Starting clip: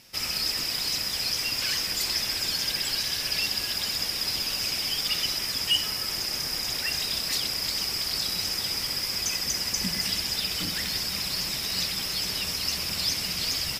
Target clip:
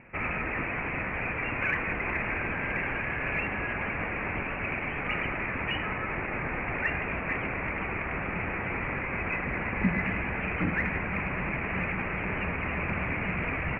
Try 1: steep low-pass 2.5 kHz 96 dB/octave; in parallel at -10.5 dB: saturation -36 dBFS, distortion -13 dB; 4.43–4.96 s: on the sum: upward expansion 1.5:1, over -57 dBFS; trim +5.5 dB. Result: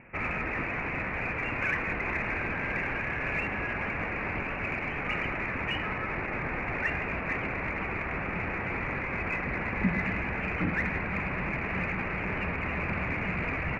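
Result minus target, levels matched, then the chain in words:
saturation: distortion +14 dB
steep low-pass 2.5 kHz 96 dB/octave; in parallel at -10.5 dB: saturation -24.5 dBFS, distortion -27 dB; 4.43–4.96 s: on the sum: upward expansion 1.5:1, over -57 dBFS; trim +5.5 dB

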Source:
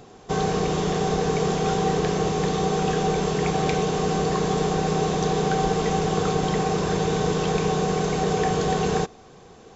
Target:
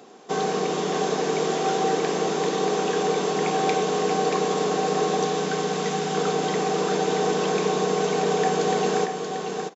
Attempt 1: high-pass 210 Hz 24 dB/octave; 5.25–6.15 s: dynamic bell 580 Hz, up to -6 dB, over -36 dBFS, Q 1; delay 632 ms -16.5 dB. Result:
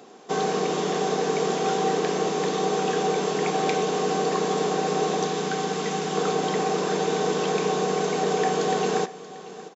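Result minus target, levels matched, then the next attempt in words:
echo-to-direct -11 dB
high-pass 210 Hz 24 dB/octave; 5.25–6.15 s: dynamic bell 580 Hz, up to -6 dB, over -36 dBFS, Q 1; delay 632 ms -5.5 dB

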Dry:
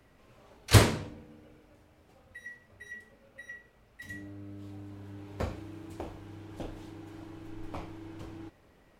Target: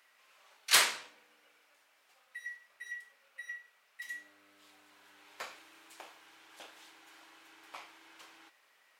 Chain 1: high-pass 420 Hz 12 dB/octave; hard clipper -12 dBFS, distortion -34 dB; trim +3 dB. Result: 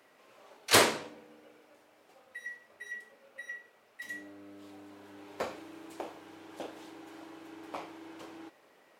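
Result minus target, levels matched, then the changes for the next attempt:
500 Hz band +15.0 dB
change: high-pass 1.4 kHz 12 dB/octave

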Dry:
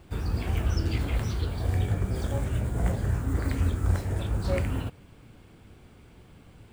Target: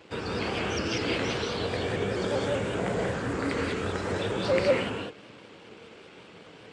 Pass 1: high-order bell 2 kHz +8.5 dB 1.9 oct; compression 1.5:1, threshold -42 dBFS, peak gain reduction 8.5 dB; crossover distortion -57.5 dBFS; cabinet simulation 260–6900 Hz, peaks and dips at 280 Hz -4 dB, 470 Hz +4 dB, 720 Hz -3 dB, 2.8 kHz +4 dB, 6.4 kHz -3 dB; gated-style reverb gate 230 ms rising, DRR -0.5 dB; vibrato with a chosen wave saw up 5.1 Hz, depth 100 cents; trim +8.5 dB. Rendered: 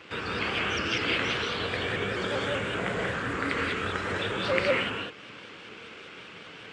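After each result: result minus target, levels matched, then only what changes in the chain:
2 kHz band +5.0 dB; compression: peak gain reduction +3 dB
remove: high-order bell 2 kHz +8.5 dB 1.9 oct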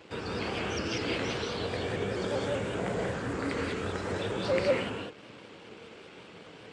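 compression: peak gain reduction +3 dB
change: compression 1.5:1, threshold -33 dBFS, peak gain reduction 5.5 dB

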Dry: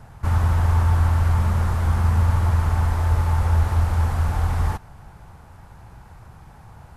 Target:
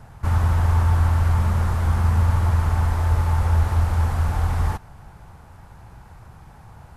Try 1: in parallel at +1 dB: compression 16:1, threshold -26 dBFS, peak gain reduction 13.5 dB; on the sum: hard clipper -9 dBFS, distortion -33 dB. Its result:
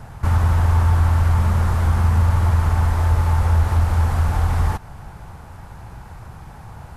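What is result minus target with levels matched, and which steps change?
compression: peak gain reduction +13.5 dB
remove: compression 16:1, threshold -26 dBFS, peak gain reduction 13.5 dB

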